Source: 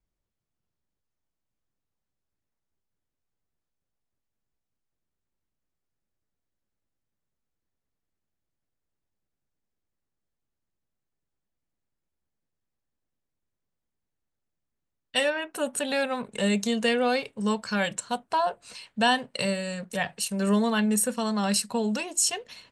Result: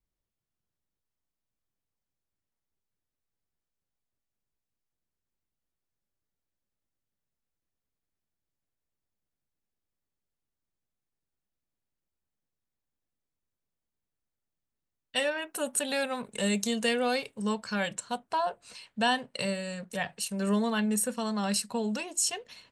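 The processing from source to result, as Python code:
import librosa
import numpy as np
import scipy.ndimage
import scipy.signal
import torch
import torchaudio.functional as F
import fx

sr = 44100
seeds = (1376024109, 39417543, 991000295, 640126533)

y = fx.high_shelf(x, sr, hz=5900.0, db=9.5, at=(15.31, 17.42))
y = F.gain(torch.from_numpy(y), -4.0).numpy()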